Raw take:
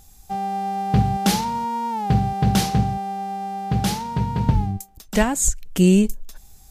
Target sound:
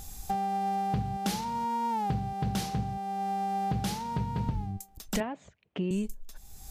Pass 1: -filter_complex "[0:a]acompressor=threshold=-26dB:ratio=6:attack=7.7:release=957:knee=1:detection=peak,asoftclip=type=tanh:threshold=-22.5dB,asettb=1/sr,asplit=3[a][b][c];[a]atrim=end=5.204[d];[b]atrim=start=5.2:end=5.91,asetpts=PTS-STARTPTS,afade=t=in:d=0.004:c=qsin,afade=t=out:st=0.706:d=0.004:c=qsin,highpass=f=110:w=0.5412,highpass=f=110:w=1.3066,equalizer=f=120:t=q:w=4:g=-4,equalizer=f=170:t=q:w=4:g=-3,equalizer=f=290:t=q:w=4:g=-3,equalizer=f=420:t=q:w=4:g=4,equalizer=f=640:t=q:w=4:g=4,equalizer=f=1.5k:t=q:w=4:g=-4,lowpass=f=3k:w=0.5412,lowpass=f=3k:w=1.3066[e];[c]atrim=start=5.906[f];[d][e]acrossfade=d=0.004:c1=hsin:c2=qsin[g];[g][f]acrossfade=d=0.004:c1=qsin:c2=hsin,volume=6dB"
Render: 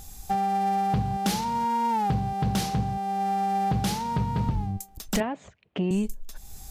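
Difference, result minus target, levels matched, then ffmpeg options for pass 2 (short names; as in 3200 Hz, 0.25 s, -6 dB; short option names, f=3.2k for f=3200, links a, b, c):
compressor: peak gain reduction -6 dB
-filter_complex "[0:a]acompressor=threshold=-33dB:ratio=6:attack=7.7:release=957:knee=1:detection=peak,asoftclip=type=tanh:threshold=-22.5dB,asettb=1/sr,asplit=3[a][b][c];[a]atrim=end=5.204[d];[b]atrim=start=5.2:end=5.91,asetpts=PTS-STARTPTS,afade=t=in:d=0.004:c=qsin,afade=t=out:st=0.706:d=0.004:c=qsin,highpass=f=110:w=0.5412,highpass=f=110:w=1.3066,equalizer=f=120:t=q:w=4:g=-4,equalizer=f=170:t=q:w=4:g=-3,equalizer=f=290:t=q:w=4:g=-3,equalizer=f=420:t=q:w=4:g=4,equalizer=f=640:t=q:w=4:g=4,equalizer=f=1.5k:t=q:w=4:g=-4,lowpass=f=3k:w=0.5412,lowpass=f=3k:w=1.3066[e];[c]atrim=start=5.906[f];[d][e]acrossfade=d=0.004:c1=hsin:c2=qsin[g];[g][f]acrossfade=d=0.004:c1=qsin:c2=hsin,volume=6dB"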